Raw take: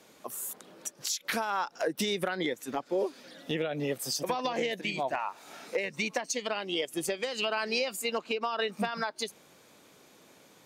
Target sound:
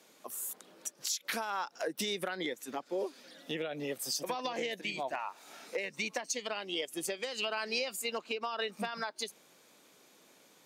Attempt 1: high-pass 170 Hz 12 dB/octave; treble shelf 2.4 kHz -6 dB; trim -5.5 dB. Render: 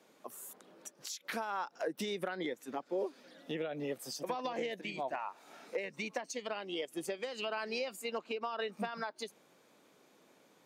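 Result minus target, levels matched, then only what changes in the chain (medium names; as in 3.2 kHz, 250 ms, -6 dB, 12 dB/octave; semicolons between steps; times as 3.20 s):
4 kHz band -4.0 dB
change: treble shelf 2.4 kHz +4 dB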